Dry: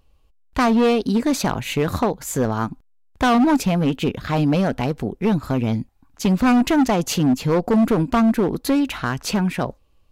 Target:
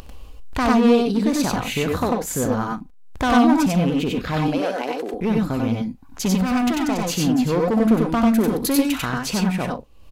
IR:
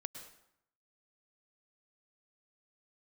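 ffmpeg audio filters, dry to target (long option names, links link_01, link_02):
-filter_complex "[0:a]asettb=1/sr,asplit=3[link_01][link_02][link_03];[link_01]atrim=end=4.484[link_04];[link_02]atrim=start=4.48:end=5.14,asetpts=PTS-STARTPTS,afade=type=in:duration=0.004:curve=qsin,afade=type=out:start_time=0.656:duration=0.004:curve=qsin,highpass=frequency=320:width=0.5412,highpass=frequency=320:width=1.3066[link_05];[link_03]atrim=start=5.136[link_06];[link_04][link_05]acrossfade=duration=0.004:curve1=hsin:curve2=qsin[link_07];[link_07][link_06]acrossfade=duration=0.004:curve1=qsin:curve2=hsin,asettb=1/sr,asplit=3[link_08][link_09][link_10];[link_08]atrim=end=8.334[link_11];[link_09]atrim=start=8.33:end=8.96,asetpts=PTS-STARTPTS,afade=type=in:duration=0.004:curve=qsin,afade=type=out:start_time=0.626:duration=0.004:curve=qsin,highshelf=frequency=5000:gain=11.5[link_12];[link_10]atrim=start=8.956[link_13];[link_11][link_12]acrossfade=duration=0.004:curve1=hsin:curve2=qsin[link_14];[link_14][link_13]acrossfade=duration=0.004:curve1=qsin:curve2=hsin,acompressor=mode=upward:threshold=-19dB:ratio=2.5,asettb=1/sr,asplit=3[link_15][link_16][link_17];[link_15]atrim=end=6.344[link_18];[link_16]atrim=start=6.34:end=7.05,asetpts=PTS-STARTPTS,afade=type=in:duration=0.004:curve=qsin,afade=type=out:start_time=0.706:duration=0.004:curve=qsin,asoftclip=type=hard:threshold=-19dB[link_19];[link_17]atrim=start=7.046[link_20];[link_18][link_19]acrossfade=duration=0.004:curve1=hsin:curve2=qsin[link_21];[link_21][link_20]acrossfade=duration=0.004:curve1=qsin:curve2=hsin,asplit=2[link_22][link_23];[link_23]aecho=0:1:64|93|97|134:0.299|0.668|0.631|0.168[link_24];[link_22][link_24]amix=inputs=2:normalize=0,volume=-3.5dB"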